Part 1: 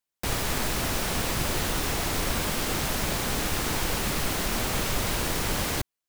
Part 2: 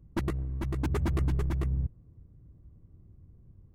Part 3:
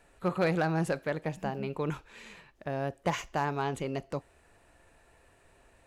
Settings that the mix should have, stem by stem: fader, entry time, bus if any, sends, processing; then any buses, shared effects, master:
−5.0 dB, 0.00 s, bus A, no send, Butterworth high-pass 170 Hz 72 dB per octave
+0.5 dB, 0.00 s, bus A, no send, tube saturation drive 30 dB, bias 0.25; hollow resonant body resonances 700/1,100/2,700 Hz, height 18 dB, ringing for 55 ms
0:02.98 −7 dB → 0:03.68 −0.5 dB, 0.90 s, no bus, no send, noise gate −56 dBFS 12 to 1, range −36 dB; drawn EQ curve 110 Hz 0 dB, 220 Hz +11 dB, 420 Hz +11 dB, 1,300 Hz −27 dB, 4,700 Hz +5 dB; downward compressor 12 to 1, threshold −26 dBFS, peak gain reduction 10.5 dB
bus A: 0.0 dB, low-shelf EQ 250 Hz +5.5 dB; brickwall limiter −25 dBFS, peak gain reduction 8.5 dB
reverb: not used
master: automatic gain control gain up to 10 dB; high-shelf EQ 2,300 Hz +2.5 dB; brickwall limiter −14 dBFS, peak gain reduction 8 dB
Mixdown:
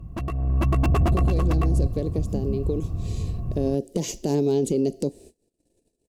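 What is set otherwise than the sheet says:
stem 1: muted
stem 2 +0.5 dB → +12.0 dB

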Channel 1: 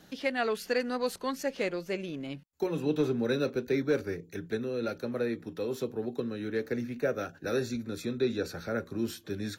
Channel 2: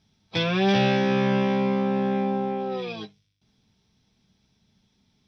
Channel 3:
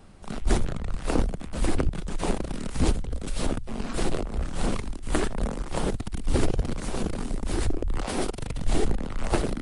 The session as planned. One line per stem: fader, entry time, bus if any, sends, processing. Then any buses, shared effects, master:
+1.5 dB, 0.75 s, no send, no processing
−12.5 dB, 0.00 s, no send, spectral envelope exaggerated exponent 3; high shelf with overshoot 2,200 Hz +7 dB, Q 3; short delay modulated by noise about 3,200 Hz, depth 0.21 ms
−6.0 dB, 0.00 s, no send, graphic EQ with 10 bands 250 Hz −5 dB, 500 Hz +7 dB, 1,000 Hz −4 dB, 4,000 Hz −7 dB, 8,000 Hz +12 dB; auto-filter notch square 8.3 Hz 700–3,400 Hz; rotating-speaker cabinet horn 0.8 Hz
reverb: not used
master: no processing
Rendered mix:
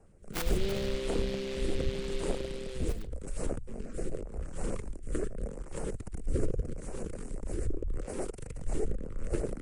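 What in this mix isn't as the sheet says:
stem 1: muted
master: extra high-shelf EQ 3,100 Hz −10 dB

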